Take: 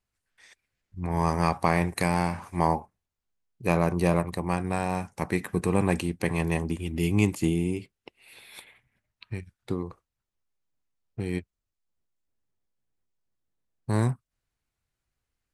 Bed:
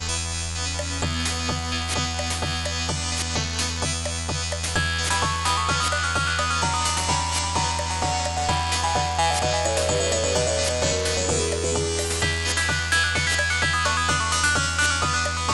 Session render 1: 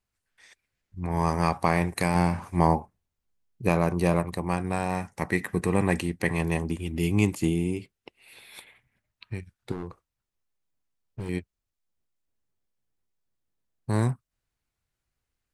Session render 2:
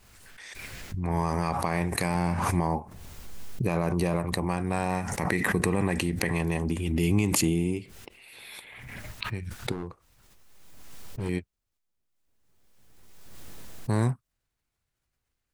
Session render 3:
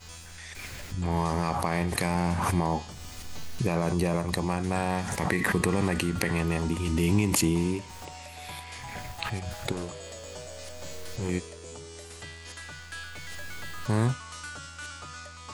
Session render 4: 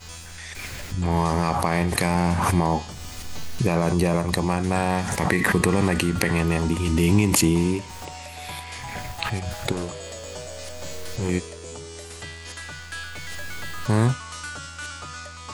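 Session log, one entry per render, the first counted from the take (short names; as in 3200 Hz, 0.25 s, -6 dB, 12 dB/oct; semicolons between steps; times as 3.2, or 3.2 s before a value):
2.15–3.69 low shelf 440 Hz +5.5 dB; 4.9–6.38 bell 1900 Hz +8.5 dB 0.2 oct; 9.72–11.29 hard clip -29.5 dBFS
limiter -14 dBFS, peak gain reduction 8 dB; backwards sustainer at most 28 dB/s
add bed -19.5 dB
gain +5.5 dB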